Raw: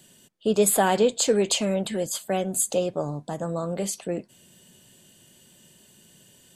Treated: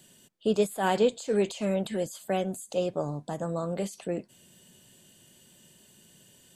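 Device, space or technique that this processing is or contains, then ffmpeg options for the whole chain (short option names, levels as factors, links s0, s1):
de-esser from a sidechain: -filter_complex "[0:a]asplit=2[s0][s1];[s1]highpass=f=4800:w=0.5412,highpass=f=4800:w=1.3066,apad=whole_len=289203[s2];[s0][s2]sidechaincompress=threshold=0.0141:ratio=5:attack=0.92:release=80,volume=0.75"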